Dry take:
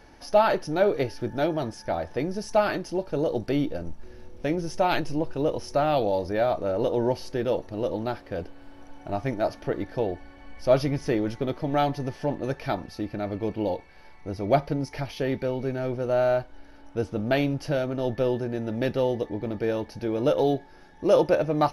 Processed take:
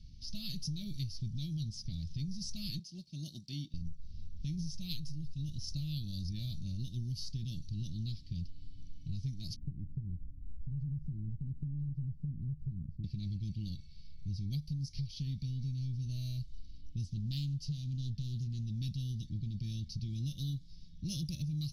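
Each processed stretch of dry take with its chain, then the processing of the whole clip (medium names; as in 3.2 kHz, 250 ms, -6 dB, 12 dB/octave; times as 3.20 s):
2.79–3.74 s: high-pass 250 Hz + peaking EQ 740 Hz +10.5 dB 0.47 oct + upward expansion, over -38 dBFS
9.56–13.04 s: inverse Chebyshev low-pass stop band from 720 Hz + compression 2.5:1, threshold -30 dBFS + loudspeaker Doppler distortion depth 0.79 ms
17.13–18.64 s: de-hum 200.3 Hz, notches 27 + loudspeaker Doppler distortion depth 0.22 ms
whole clip: level-controlled noise filter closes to 2.9 kHz, open at -18.5 dBFS; elliptic band-stop 160–4200 Hz, stop band 50 dB; compression, threshold -40 dBFS; trim +5.5 dB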